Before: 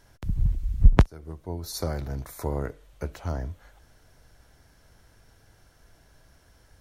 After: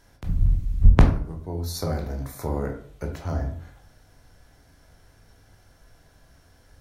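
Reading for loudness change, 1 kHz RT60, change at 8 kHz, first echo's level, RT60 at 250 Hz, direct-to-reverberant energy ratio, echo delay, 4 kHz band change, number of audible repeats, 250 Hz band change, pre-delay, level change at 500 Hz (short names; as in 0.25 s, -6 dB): +3.0 dB, 0.50 s, +1.0 dB, none, 0.60 s, 3.0 dB, none, +1.5 dB, none, +3.5 dB, 15 ms, +2.5 dB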